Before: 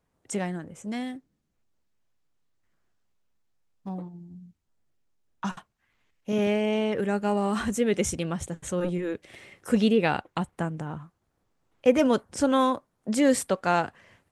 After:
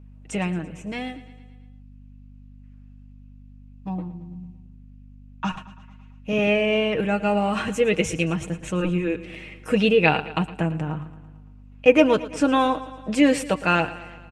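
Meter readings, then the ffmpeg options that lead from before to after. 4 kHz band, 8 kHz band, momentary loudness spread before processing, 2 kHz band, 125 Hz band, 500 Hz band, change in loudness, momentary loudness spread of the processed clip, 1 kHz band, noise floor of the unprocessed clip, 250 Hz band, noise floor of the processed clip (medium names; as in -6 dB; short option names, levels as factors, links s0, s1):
+6.5 dB, -2.0 dB, 16 LU, +8.5 dB, +6.0 dB, +4.5 dB, +4.0 dB, 19 LU, +3.5 dB, -76 dBFS, +3.0 dB, -46 dBFS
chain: -af "lowpass=f=3600:p=1,equalizer=f=2600:w=4.4:g=13,aecho=1:1:6.4:0.59,aeval=exprs='val(0)+0.00447*(sin(2*PI*50*n/s)+sin(2*PI*2*50*n/s)/2+sin(2*PI*3*50*n/s)/3+sin(2*PI*4*50*n/s)/4+sin(2*PI*5*50*n/s)/5)':c=same,aecho=1:1:112|224|336|448|560|672:0.15|0.0898|0.0539|0.0323|0.0194|0.0116,volume=1.41"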